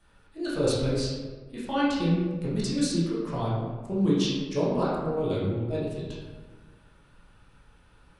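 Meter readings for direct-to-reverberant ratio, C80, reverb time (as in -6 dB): -8.0 dB, 2.0 dB, 1.4 s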